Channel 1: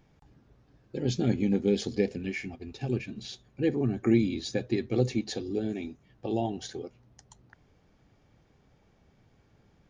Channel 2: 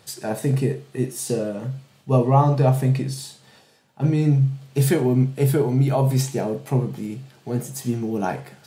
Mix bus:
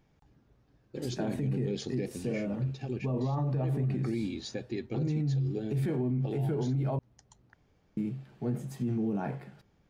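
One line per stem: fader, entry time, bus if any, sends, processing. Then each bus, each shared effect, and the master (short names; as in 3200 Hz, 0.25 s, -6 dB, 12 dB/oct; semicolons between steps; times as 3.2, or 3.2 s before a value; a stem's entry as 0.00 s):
-4.5 dB, 0.00 s, no send, dry
+3.0 dB, 0.95 s, muted 6.99–7.97, no send, HPF 190 Hz 12 dB/oct; tone controls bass +14 dB, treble -13 dB; auto duck -11 dB, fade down 1.55 s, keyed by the first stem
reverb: off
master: limiter -24 dBFS, peak gain reduction 13.5 dB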